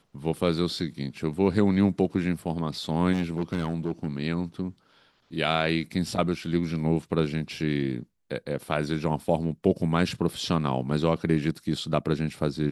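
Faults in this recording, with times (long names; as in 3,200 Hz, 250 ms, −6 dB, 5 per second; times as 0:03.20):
0:03.12–0:04.07: clipping −21 dBFS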